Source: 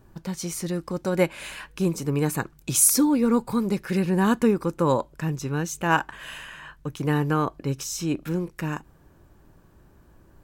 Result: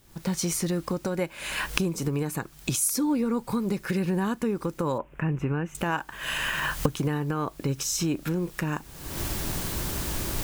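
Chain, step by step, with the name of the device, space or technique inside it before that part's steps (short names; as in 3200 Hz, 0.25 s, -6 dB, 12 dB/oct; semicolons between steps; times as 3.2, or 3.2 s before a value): cheap recorder with automatic gain (white noise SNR 31 dB; recorder AGC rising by 50 dB/s); 4.98–5.75 EQ curve 2700 Hz 0 dB, 4200 Hz -28 dB, 7200 Hz -22 dB; gain -8 dB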